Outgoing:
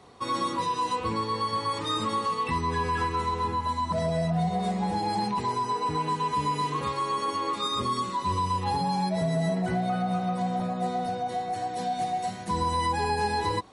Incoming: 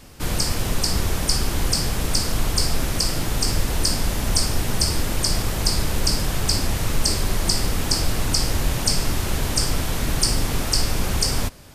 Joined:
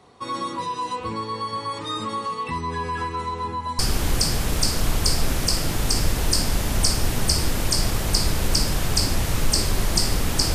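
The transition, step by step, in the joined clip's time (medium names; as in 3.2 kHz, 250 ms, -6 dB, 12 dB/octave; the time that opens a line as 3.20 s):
outgoing
3.79 s: go over to incoming from 1.31 s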